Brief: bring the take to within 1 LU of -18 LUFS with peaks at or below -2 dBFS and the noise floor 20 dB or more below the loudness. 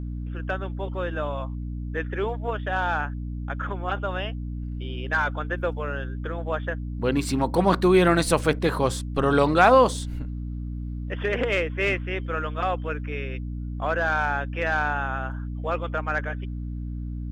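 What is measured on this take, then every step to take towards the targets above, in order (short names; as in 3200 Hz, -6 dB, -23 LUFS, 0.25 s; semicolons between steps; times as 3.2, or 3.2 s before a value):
hum 60 Hz; harmonics up to 300 Hz; hum level -29 dBFS; loudness -25.5 LUFS; peak -4.5 dBFS; loudness target -18.0 LUFS
-> notches 60/120/180/240/300 Hz; gain +7.5 dB; limiter -2 dBFS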